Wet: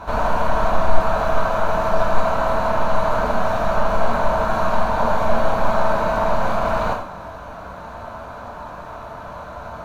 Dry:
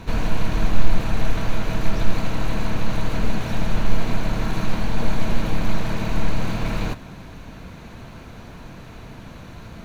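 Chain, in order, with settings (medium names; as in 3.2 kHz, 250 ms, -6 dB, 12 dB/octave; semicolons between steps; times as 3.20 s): high-order bell 910 Hz +15.5 dB; gated-style reverb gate 190 ms falling, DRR -1.5 dB; trim -5.5 dB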